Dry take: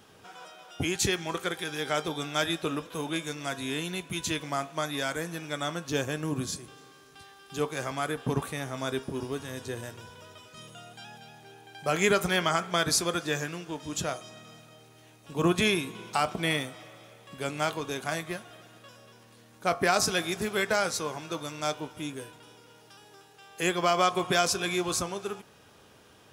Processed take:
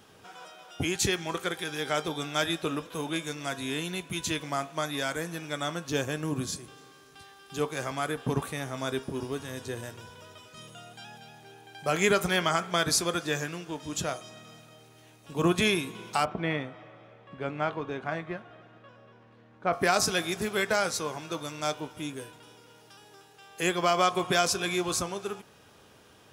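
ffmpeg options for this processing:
-filter_complex "[0:a]asplit=3[a][b][c];[a]afade=t=out:st=16.24:d=0.02[d];[b]lowpass=2k,afade=t=in:st=16.24:d=0.02,afade=t=out:st=19.72:d=0.02[e];[c]afade=t=in:st=19.72:d=0.02[f];[d][e][f]amix=inputs=3:normalize=0"

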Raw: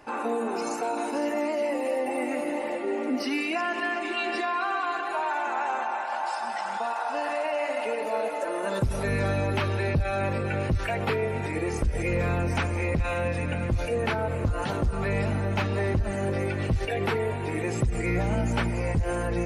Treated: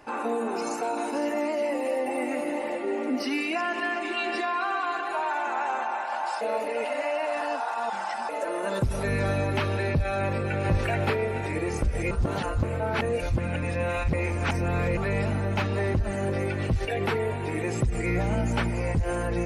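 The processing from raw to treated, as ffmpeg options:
-filter_complex "[0:a]asplit=2[a][b];[b]afade=t=in:st=8.91:d=0.01,afade=t=out:st=9.46:d=0.01,aecho=0:1:360|720|1080|1440|1800:0.251189|0.113035|0.0508657|0.0228896|0.0103003[c];[a][c]amix=inputs=2:normalize=0,asplit=2[d][e];[e]afade=t=in:st=10.21:d=0.01,afade=t=out:st=10.67:d=0.01,aecho=0:1:430|860|1290|1720|2150|2580:0.707946|0.318576|0.143359|0.0645116|0.0290302|0.0130636[f];[d][f]amix=inputs=2:normalize=0,asplit=5[g][h][i][j][k];[g]atrim=end=6.412[l];[h]atrim=start=6.408:end=8.292,asetpts=PTS-STARTPTS,areverse[m];[i]atrim=start=8.288:end=12.112[n];[j]atrim=start=12.108:end=14.972,asetpts=PTS-STARTPTS,areverse[o];[k]atrim=start=14.968[p];[l][m]acrossfade=d=0.004:c1=hsin:c2=hsin[q];[q][n]acrossfade=d=0.004:c1=hsin:c2=hsin[r];[r][o]acrossfade=d=0.004:c1=hsin:c2=hsin[s];[s][p]acrossfade=d=0.004:c1=hsin:c2=hsin"

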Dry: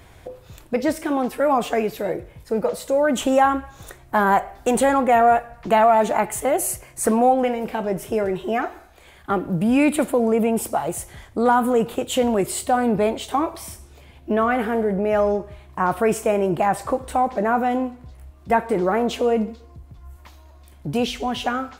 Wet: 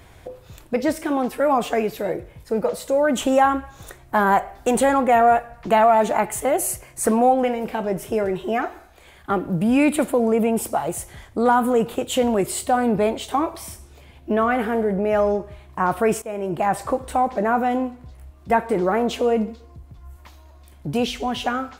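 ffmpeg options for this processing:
-filter_complex "[0:a]asplit=2[a][b];[a]atrim=end=16.22,asetpts=PTS-STARTPTS,afade=t=out:st=16.216:d=0.004:c=hsin:silence=0.16788[c];[b]atrim=start=16.22,asetpts=PTS-STARTPTS,afade=t=in:d=0.52:silence=0.16788[d];[c][d]concat=n=2:v=0:a=1"

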